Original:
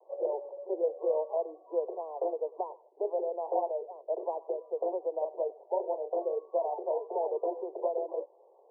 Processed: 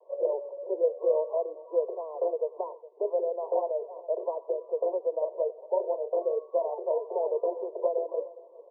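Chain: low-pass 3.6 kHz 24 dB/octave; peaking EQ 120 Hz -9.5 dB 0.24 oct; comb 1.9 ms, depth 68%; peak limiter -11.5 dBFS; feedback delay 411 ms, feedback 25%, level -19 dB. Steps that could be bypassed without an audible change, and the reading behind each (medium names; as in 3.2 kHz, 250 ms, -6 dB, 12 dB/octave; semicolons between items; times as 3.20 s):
low-pass 3.6 kHz: input has nothing above 1.1 kHz; peaking EQ 120 Hz: input has nothing below 300 Hz; peak limiter -11.5 dBFS: peak at its input -15.0 dBFS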